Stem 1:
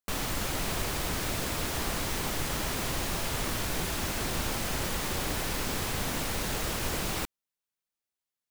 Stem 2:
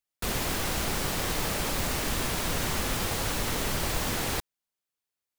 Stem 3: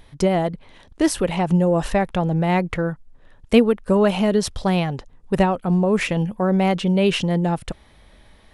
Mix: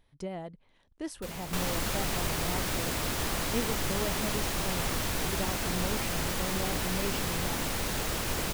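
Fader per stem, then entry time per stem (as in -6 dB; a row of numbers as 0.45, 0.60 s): 0.0, -12.0, -19.0 dB; 1.45, 1.00, 0.00 s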